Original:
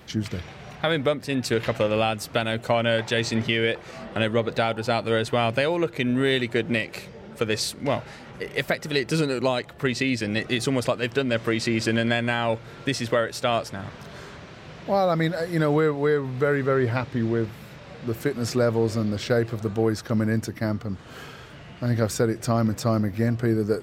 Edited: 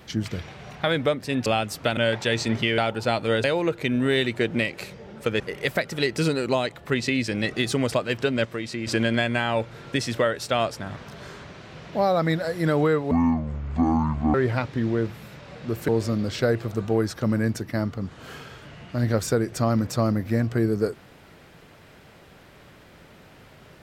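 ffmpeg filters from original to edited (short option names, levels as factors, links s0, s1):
-filter_complex "[0:a]asplit=11[s0][s1][s2][s3][s4][s5][s6][s7][s8][s9][s10];[s0]atrim=end=1.462[s11];[s1]atrim=start=1.958:end=2.472[s12];[s2]atrim=start=2.828:end=3.642[s13];[s3]atrim=start=4.598:end=5.262[s14];[s4]atrim=start=5.588:end=7.552[s15];[s5]atrim=start=8.328:end=11.382[s16];[s6]atrim=start=11.378:end=11.802,asetpts=PTS-STARTPTS,volume=0.447[s17];[s7]atrim=start=11.798:end=16.044[s18];[s8]atrim=start=16.04:end=16.73,asetpts=PTS-STARTPTS,asetrate=24696,aresample=44100,atrim=end_sample=54337,asetpts=PTS-STARTPTS[s19];[s9]atrim=start=16.726:end=18.272[s20];[s10]atrim=start=18.758[s21];[s11][s12]acrossfade=d=0.004:c1=hsin:c2=hsin[s22];[s22][s13]acrossfade=d=0.004:c1=hsin:c2=hsin[s23];[s23][s14]acrossfade=d=0.004:c1=hsin:c2=hsin[s24];[s24][s15]acrossfade=d=0.004:c1=hsin:c2=hsin[s25];[s25][s16]acrossfade=d=0.004:c1=hsin:c2=hsin[s26];[s26][s17]acrossfade=d=0.004:c1=hsin:c2=hsin[s27];[s27][s18]acrossfade=d=0.004:c1=hsin:c2=hsin[s28];[s28][s19]acrossfade=d=0.004:c1=hsin:c2=hsin[s29];[s29][s20]acrossfade=d=0.004:c1=hsin:c2=hsin[s30];[s30][s21]acrossfade=d=0.004:c1=hsin:c2=hsin"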